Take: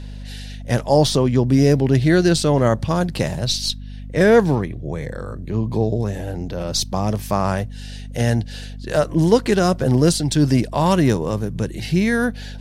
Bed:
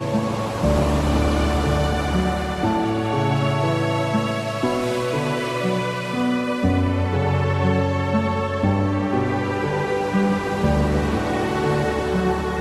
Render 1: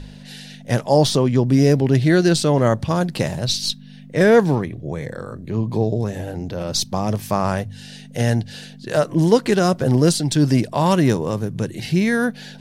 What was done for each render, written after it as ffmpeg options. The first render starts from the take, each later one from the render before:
ffmpeg -i in.wav -af "bandreject=frequency=50:width_type=h:width=4,bandreject=frequency=100:width_type=h:width=4" out.wav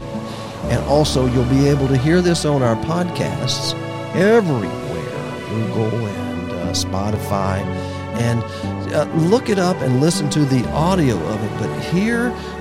ffmpeg -i in.wav -i bed.wav -filter_complex "[1:a]volume=-5dB[link_01];[0:a][link_01]amix=inputs=2:normalize=0" out.wav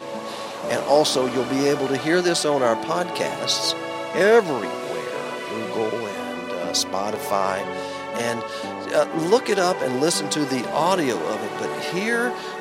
ffmpeg -i in.wav -af "highpass=390" out.wav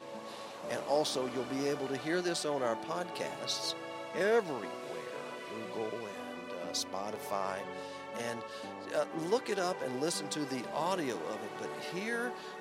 ffmpeg -i in.wav -af "volume=-13.5dB" out.wav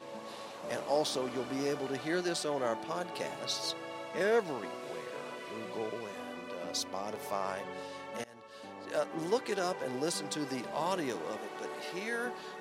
ffmpeg -i in.wav -filter_complex "[0:a]asettb=1/sr,asplit=3[link_01][link_02][link_03];[link_01]atrim=end=11.374[link_04];[link_02]atrim=start=11.37:end=12.26,asetpts=PTS-STARTPTS,afade=type=in:duration=0.004:curve=qsin,afade=type=out:start_time=0.886:duration=0.004:curve=qsin,highpass=230[link_05];[link_03]atrim=start=12.256[link_06];[link_04][link_05]acrossfade=duration=0.004:curve1=hsin:curve2=qsin[link_07];[link_07][link_06]acrossfade=duration=0.004:curve1=qsin:curve2=hsin,asplit=2[link_08][link_09];[link_08]atrim=end=8.24,asetpts=PTS-STARTPTS,afade=type=out:start_time=8.236:duration=0.004:curve=hsin:silence=0.0668344[link_10];[link_09]atrim=start=8.24,asetpts=PTS-STARTPTS,afade=type=in:duration=0.72:silence=0.0668344[link_11];[link_10][link_11]concat=n=2:v=0:a=1" out.wav

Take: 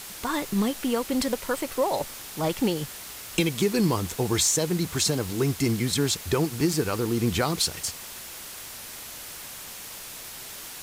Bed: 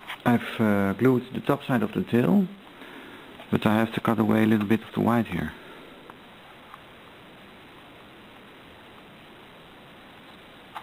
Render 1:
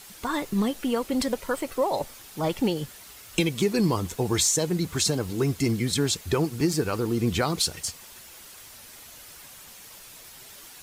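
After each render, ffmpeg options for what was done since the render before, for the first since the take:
ffmpeg -i in.wav -af "afftdn=noise_reduction=8:noise_floor=-40" out.wav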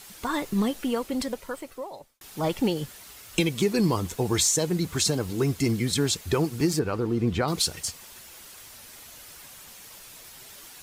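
ffmpeg -i in.wav -filter_complex "[0:a]asettb=1/sr,asplit=3[link_01][link_02][link_03];[link_01]atrim=end=6.794[link_04];[link_02]atrim=start=6.79:end=7.48,asetpts=PTS-STARTPTS,afade=type=in:duration=0.004:curve=qsin,afade=type=out:start_time=0.686:duration=0.004:curve=qsin,lowpass=frequency=1900:poles=1[link_05];[link_03]atrim=start=7.476[link_06];[link_04][link_05]acrossfade=duration=0.004:curve1=hsin:curve2=qsin[link_07];[link_07][link_06]acrossfade=duration=0.004:curve1=qsin:curve2=hsin,asplit=2[link_08][link_09];[link_08]atrim=end=2.21,asetpts=PTS-STARTPTS,afade=type=out:start_time=0.74:duration=1.47[link_10];[link_09]atrim=start=2.21,asetpts=PTS-STARTPTS,afade=type=in:duration=0.004:curve=hsin[link_11];[link_10][link_11]concat=n=2:v=0:a=1" out.wav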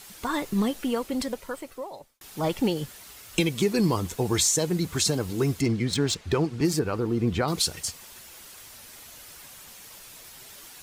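ffmpeg -i in.wav -filter_complex "[0:a]asettb=1/sr,asplit=3[link_01][link_02][link_03];[link_01]atrim=end=5.614[link_04];[link_02]atrim=start=5.61:end=6.65,asetpts=PTS-STARTPTS,afade=type=in:duration=0.004:curve=qsin,afade=type=out:start_time=1.036:duration=0.004:curve=qsin,adynamicsmooth=sensitivity=3.5:basefreq=4500[link_05];[link_03]atrim=start=6.646[link_06];[link_04][link_05]acrossfade=duration=0.004:curve1=hsin:curve2=qsin[link_07];[link_07][link_06]acrossfade=duration=0.004:curve1=qsin:curve2=hsin" out.wav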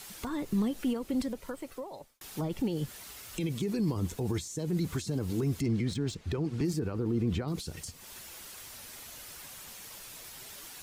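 ffmpeg -i in.wav -filter_complex "[0:a]alimiter=limit=-21dB:level=0:latency=1:release=26,acrossover=split=380[link_01][link_02];[link_02]acompressor=threshold=-41dB:ratio=6[link_03];[link_01][link_03]amix=inputs=2:normalize=0" out.wav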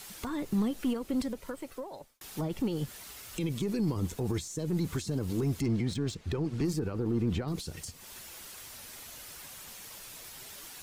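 ffmpeg -i in.wav -af "aeval=exprs='0.0944*(cos(1*acos(clip(val(0)/0.0944,-1,1)))-cos(1*PI/2))+0.00299*(cos(6*acos(clip(val(0)/0.0944,-1,1)))-cos(6*PI/2))':channel_layout=same" out.wav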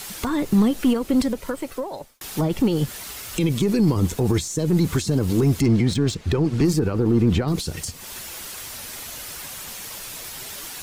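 ffmpeg -i in.wav -af "volume=11.5dB" out.wav

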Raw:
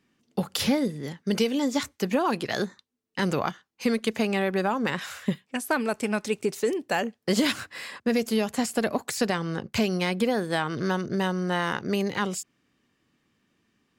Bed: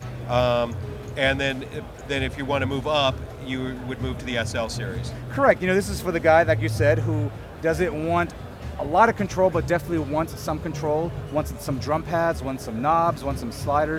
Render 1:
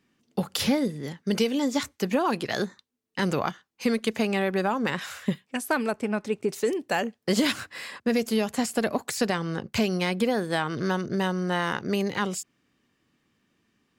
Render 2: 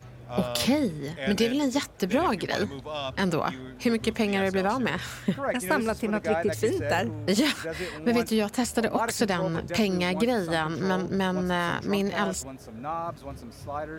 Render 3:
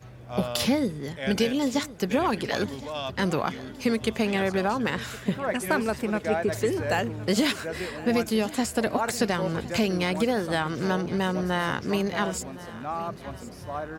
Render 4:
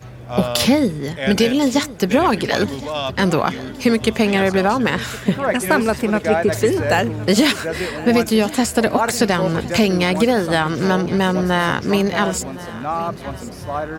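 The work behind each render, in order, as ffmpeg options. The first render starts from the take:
ffmpeg -i in.wav -filter_complex "[0:a]asplit=3[link_01][link_02][link_03];[link_01]afade=type=out:start_time=5.9:duration=0.02[link_04];[link_02]highshelf=frequency=2800:gain=-12,afade=type=in:start_time=5.9:duration=0.02,afade=type=out:start_time=6.48:duration=0.02[link_05];[link_03]afade=type=in:start_time=6.48:duration=0.02[link_06];[link_04][link_05][link_06]amix=inputs=3:normalize=0" out.wav
ffmpeg -i in.wav -i bed.wav -filter_complex "[1:a]volume=-12dB[link_01];[0:a][link_01]amix=inputs=2:normalize=0" out.wav
ffmpeg -i in.wav -af "aecho=1:1:1065|2130|3195|4260|5325:0.133|0.0733|0.0403|0.0222|0.0122" out.wav
ffmpeg -i in.wav -af "volume=9dB,alimiter=limit=-3dB:level=0:latency=1" out.wav

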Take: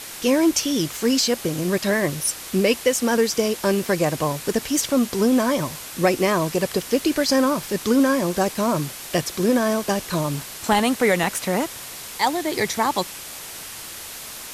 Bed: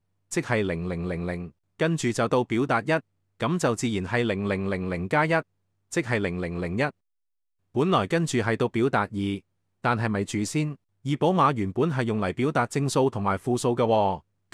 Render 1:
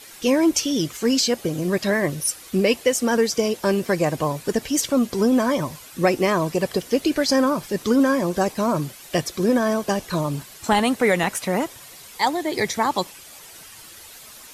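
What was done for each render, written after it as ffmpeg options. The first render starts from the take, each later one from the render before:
ffmpeg -i in.wav -af "afftdn=noise_reduction=10:noise_floor=-36" out.wav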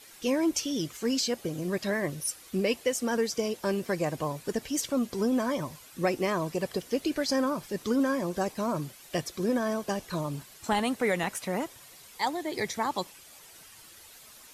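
ffmpeg -i in.wav -af "volume=-8.5dB" out.wav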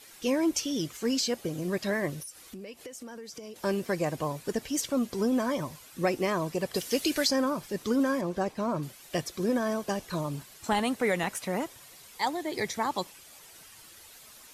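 ffmpeg -i in.wav -filter_complex "[0:a]asettb=1/sr,asplit=3[link_01][link_02][link_03];[link_01]atrim=end=2.224[link_04];[link_02]atrim=start=2.22:end=3.56,asetpts=PTS-STARTPTS,afade=type=in:duration=0.004:curve=qsin,afade=type=out:start_time=1.336:duration=0.004:curve=qsin,acompressor=threshold=-39dB:ratio=12:attack=3.2:release=140:knee=1:detection=peak[link_05];[link_03]atrim=start=3.556[link_06];[link_04][link_05]acrossfade=duration=0.004:curve1=hsin:curve2=qsin[link_07];[link_07][link_06]acrossfade=duration=0.004:curve1=qsin:curve2=hsin,asplit=3[link_08][link_09][link_10];[link_08]afade=type=out:start_time=6.74:duration=0.02[link_11];[link_09]highshelf=frequency=2000:gain=11,afade=type=in:start_time=6.74:duration=0.02,afade=type=out:start_time=7.27:duration=0.02[link_12];[link_10]afade=type=in:start_time=7.27:duration=0.02[link_13];[link_11][link_12][link_13]amix=inputs=3:normalize=0,asettb=1/sr,asplit=3[link_14][link_15][link_16];[link_14]atrim=end=8.214[link_17];[link_15]atrim=start=8.21:end=8.83,asetpts=PTS-STARTPTS,afade=type=in:duration=0.004:curve=qsin,afade=type=out:start_time=0.616:duration=0.004:curve=qsin,lowpass=frequency=3200:poles=1[link_18];[link_16]atrim=start=8.826[link_19];[link_17][link_18]acrossfade=duration=0.004:curve1=hsin:curve2=qsin[link_20];[link_20][link_19]acrossfade=duration=0.004:curve1=qsin:curve2=hsin" out.wav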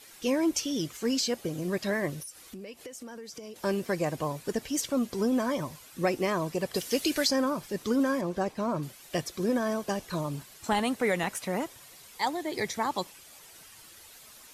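ffmpeg -i in.wav -af anull out.wav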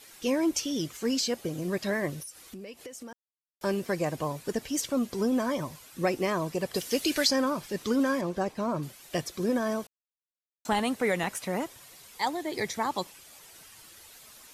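ffmpeg -i in.wav -filter_complex "[0:a]asettb=1/sr,asplit=3[link_01][link_02][link_03];[link_01]atrim=end=7.084[link_04];[link_02]atrim=start=7.08:end=8.31,asetpts=PTS-STARTPTS,afade=type=in:duration=0.004:curve=qsin,afade=type=out:start_time=1.226:duration=0.004:curve=qsin,equalizer=frequency=3000:width=0.51:gain=3[link_05];[link_03]atrim=start=8.306[link_06];[link_04][link_05]acrossfade=duration=0.004:curve1=hsin:curve2=qsin[link_07];[link_07][link_06]acrossfade=duration=0.004:curve1=qsin:curve2=hsin,asplit=5[link_08][link_09][link_10][link_11][link_12];[link_08]atrim=end=3.13,asetpts=PTS-STARTPTS,afade=type=out:start_time=3.126:duration=0.004:curve=hsin[link_13];[link_09]atrim=start=3.13:end=3.61,asetpts=PTS-STARTPTS,volume=0[link_14];[link_10]atrim=start=3.61:end=9.87,asetpts=PTS-STARTPTS,afade=type=in:duration=0.004:curve=hsin,afade=type=out:start_time=6.256:duration=0.004:curve=hsin[link_15];[link_11]atrim=start=9.87:end=10.65,asetpts=PTS-STARTPTS,volume=0[link_16];[link_12]atrim=start=10.65,asetpts=PTS-STARTPTS,afade=type=in:duration=0.004:curve=hsin[link_17];[link_13][link_14][link_15][link_16][link_17]concat=n=5:v=0:a=1" out.wav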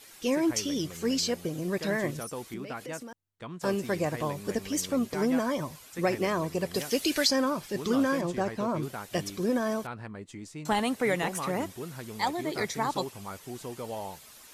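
ffmpeg -i in.wav -i bed.wav -filter_complex "[1:a]volume=-15.5dB[link_01];[0:a][link_01]amix=inputs=2:normalize=0" out.wav

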